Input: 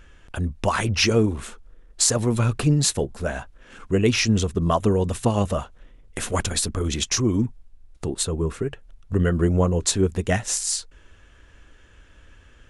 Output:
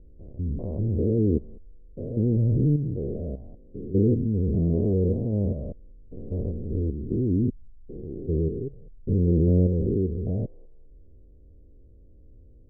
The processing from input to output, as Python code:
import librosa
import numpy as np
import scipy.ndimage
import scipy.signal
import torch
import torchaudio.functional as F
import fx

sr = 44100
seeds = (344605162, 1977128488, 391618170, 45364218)

y = fx.spec_steps(x, sr, hold_ms=200)
y = scipy.signal.sosfilt(scipy.signal.butter(6, 510.0, 'lowpass', fs=sr, output='sos'), y)
y = fx.quant_float(y, sr, bits=8)
y = y * 10.0 ** (1.5 / 20.0)